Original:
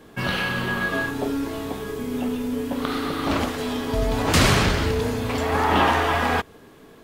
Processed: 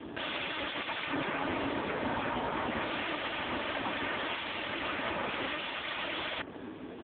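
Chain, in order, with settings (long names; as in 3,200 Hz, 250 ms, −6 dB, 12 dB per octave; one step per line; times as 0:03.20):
wrap-around overflow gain 15 dB
treble cut that deepens with the level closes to 1,900 Hz, closed at −20 dBFS
wave folding −31.5 dBFS
comb filter 3.3 ms, depth 32%
level +7.5 dB
AMR narrowband 5.15 kbit/s 8,000 Hz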